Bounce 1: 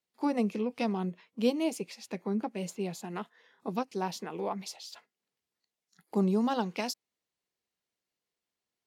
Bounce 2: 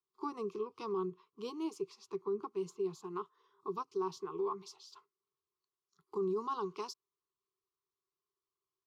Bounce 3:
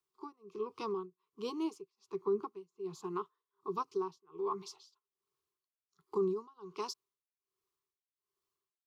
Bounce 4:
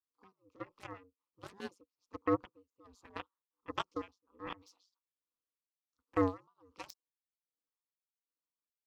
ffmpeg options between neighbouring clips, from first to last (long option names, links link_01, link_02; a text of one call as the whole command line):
ffmpeg -i in.wav -filter_complex "[0:a]firequalizer=gain_entry='entry(150,0);entry(240,-18);entry(390,12);entry(550,-25);entry(1100,12);entry(1700,-17);entry(3100,-7);entry(5700,-4);entry(9700,-14)':delay=0.05:min_phase=1,acrossover=split=110[link_01][link_02];[link_02]alimiter=limit=-23.5dB:level=0:latency=1:release=12[link_03];[link_01][link_03]amix=inputs=2:normalize=0,volume=-5dB" out.wav
ffmpeg -i in.wav -af "tremolo=f=1.3:d=0.98,volume=4dB" out.wav
ffmpeg -i in.wav -af "aeval=exprs='0.0631*(cos(1*acos(clip(val(0)/0.0631,-1,1)))-cos(1*PI/2))+0.0224*(cos(3*acos(clip(val(0)/0.0631,-1,1)))-cos(3*PI/2))+0.000708*(cos(7*acos(clip(val(0)/0.0631,-1,1)))-cos(7*PI/2))':channel_layout=same,aeval=exprs='val(0)*sin(2*PI*95*n/s)':channel_layout=same,volume=7dB" out.wav